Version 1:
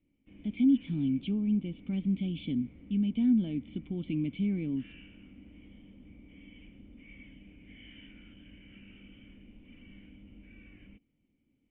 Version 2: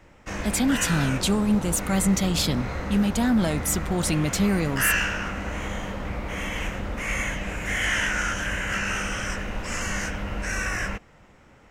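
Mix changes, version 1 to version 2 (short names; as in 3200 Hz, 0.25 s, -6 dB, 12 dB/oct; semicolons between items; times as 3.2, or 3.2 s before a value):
background +11.5 dB; master: remove vocal tract filter i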